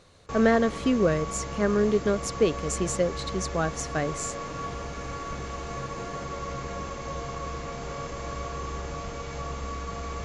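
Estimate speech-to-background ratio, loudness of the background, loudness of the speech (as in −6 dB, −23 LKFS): 8.5 dB, −35.0 LKFS, −26.5 LKFS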